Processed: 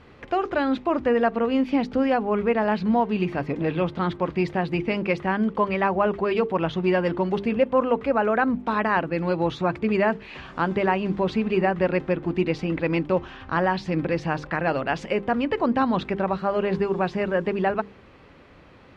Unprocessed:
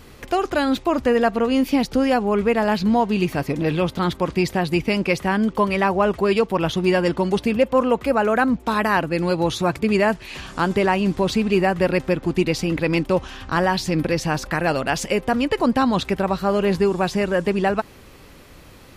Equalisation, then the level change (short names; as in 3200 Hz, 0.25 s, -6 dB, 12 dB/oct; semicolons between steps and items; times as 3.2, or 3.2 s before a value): HPF 76 Hz 6 dB/oct; LPF 2600 Hz 12 dB/oct; notches 50/100/150/200/250/300/350/400/450 Hz; -2.5 dB